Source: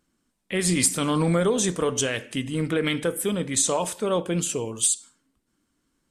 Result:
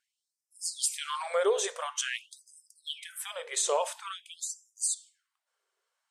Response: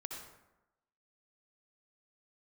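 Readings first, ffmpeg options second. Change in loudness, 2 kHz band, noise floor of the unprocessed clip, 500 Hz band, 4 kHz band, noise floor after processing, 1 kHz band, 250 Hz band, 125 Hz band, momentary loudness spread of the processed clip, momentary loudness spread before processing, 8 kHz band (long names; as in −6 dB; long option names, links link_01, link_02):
−8.0 dB, −7.5 dB, −75 dBFS, −7.5 dB, −5.5 dB, below −85 dBFS, −4.0 dB, below −25 dB, below −40 dB, 12 LU, 7 LU, −7.5 dB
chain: -af "highshelf=frequency=7300:gain=-9.5,afftfilt=real='re*gte(b*sr/1024,360*pow(5000/360,0.5+0.5*sin(2*PI*0.48*pts/sr)))':imag='im*gte(b*sr/1024,360*pow(5000/360,0.5+0.5*sin(2*PI*0.48*pts/sr)))':win_size=1024:overlap=0.75,volume=-2.5dB"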